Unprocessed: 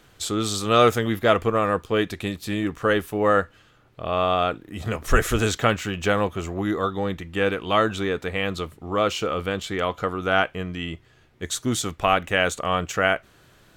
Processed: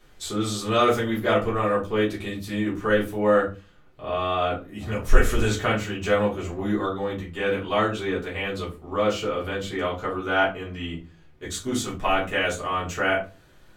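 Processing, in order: shoebox room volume 120 m³, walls furnished, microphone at 3.3 m; gain -10.5 dB

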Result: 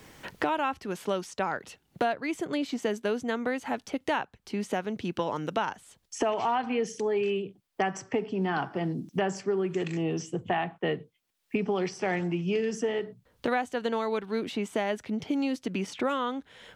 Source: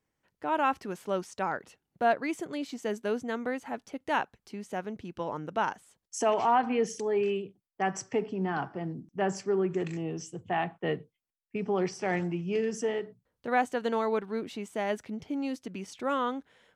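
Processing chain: bell 3400 Hz +4 dB 1.1 oct; three-band squash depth 100%

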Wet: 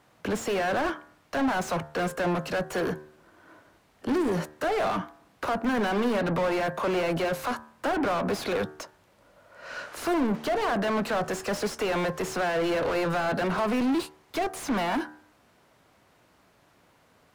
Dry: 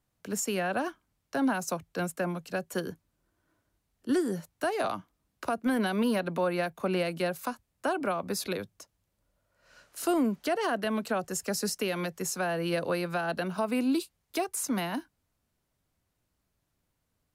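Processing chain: overdrive pedal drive 34 dB, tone 1200 Hz, clips at -18.5 dBFS; de-hum 75.59 Hz, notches 25

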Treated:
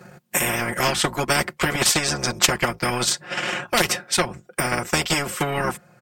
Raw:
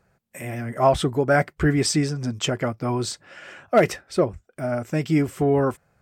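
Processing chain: octaver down 1 oct, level -4 dB; HPF 100 Hz 24 dB/oct; comb 5.6 ms, depth 93%; transient shaper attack +8 dB, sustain -8 dB; spectral compressor 4:1; gain -5.5 dB

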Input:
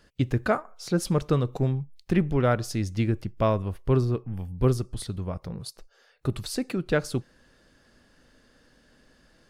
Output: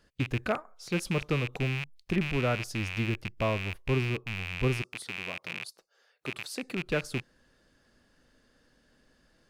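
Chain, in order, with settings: rattling part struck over -36 dBFS, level -17 dBFS; 4.82–6.63 Bessel high-pass 290 Hz, order 2; gain -6 dB

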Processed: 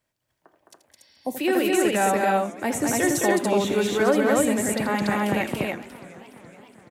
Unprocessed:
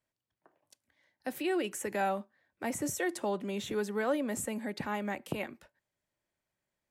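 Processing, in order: loudspeakers at several distances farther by 28 m -11 dB, 73 m -3 dB, 98 m -1 dB; spectral repair 1.01–1.34, 1100–5700 Hz before; warbling echo 0.42 s, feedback 64%, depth 197 cents, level -19.5 dB; gain +8.5 dB

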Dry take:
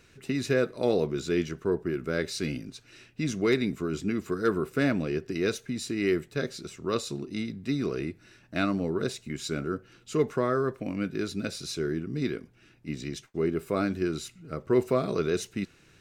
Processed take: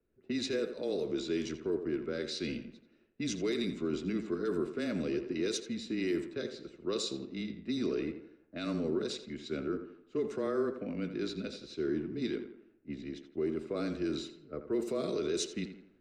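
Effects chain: low-pass opened by the level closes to 930 Hz, open at -21 dBFS; graphic EQ 125/250/500/1000/4000/8000 Hz -10/+4/+6/-4/+7/+8 dB; limiter -19 dBFS, peak gain reduction 10.5 dB; frequency shift -18 Hz; on a send: tape echo 85 ms, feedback 56%, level -8 dB, low-pass 2700 Hz; on the sum: three-band expander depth 40%; gain -6 dB

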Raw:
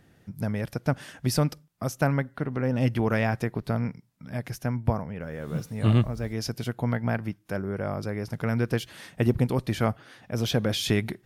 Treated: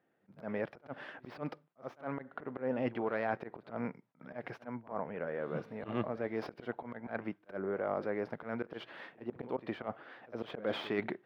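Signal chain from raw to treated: tracing distortion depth 0.13 ms; gate -55 dBFS, range -13 dB; HPF 410 Hz 12 dB/oct; high shelf 2300 Hz -7.5 dB; reverse; compressor 10:1, threshold -32 dBFS, peak gain reduction 11.5 dB; reverse; auto swell 0.112 s; air absorption 380 m; pre-echo 62 ms -16.5 dB; gain +4 dB

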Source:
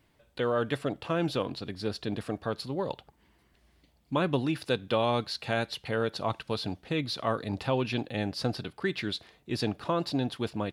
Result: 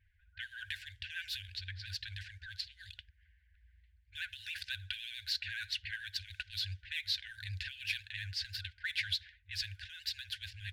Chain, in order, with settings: median filter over 5 samples; low-pass opened by the level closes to 1400 Hz, open at -26.5 dBFS; limiter -23.5 dBFS, peak gain reduction 10.5 dB; FFT band-reject 100–1500 Hz; vibrato 14 Hz 77 cents; gain +2.5 dB

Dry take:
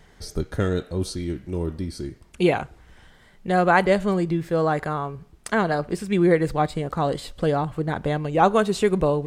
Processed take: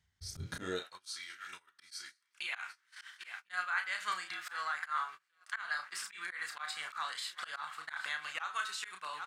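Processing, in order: EQ curve 100 Hz 0 dB, 490 Hz -16 dB, 1100 Hz -3 dB, 6000 Hz +10 dB; swung echo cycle 1.046 s, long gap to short 3:1, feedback 43%, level -21 dB; compressor 8:1, threshold -32 dBFS, peak gain reduction 16.5 dB; doubler 33 ms -6.5 dB; de-hum 108.5 Hz, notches 34; high-pass sweep 71 Hz -> 1400 Hz, 0.32–1.01; vocal rider within 5 dB 0.5 s; high shelf 5700 Hz -10.5 dB; gate -44 dBFS, range -25 dB; auto swell 0.113 s; noise-modulated level, depth 55%; gain +3 dB

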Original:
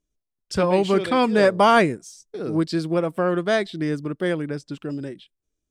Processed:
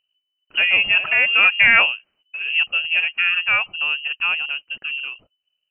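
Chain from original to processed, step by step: inverted band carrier 3000 Hz; low shelf 100 Hz -6.5 dB; gain +2 dB

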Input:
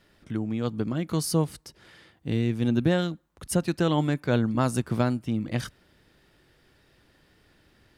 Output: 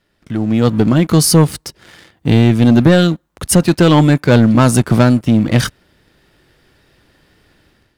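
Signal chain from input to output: sample leveller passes 2; AGC gain up to 11 dB; gain +1 dB

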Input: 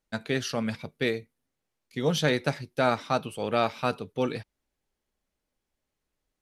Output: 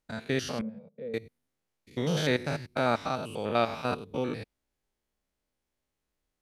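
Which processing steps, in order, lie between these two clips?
stepped spectrum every 0.1 s; 0.61–1.14 double band-pass 320 Hz, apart 1.3 oct

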